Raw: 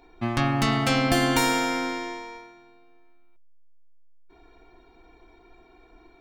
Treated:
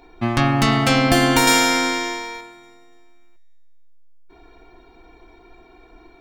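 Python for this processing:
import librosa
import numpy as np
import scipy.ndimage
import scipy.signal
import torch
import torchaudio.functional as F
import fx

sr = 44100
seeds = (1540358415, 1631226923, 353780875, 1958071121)

y = fx.high_shelf(x, sr, hz=2500.0, db=9.5, at=(1.47, 2.41))
y = fx.echo_wet_highpass(y, sr, ms=290, feedback_pct=38, hz=1600.0, wet_db=-22)
y = y * librosa.db_to_amplitude(6.0)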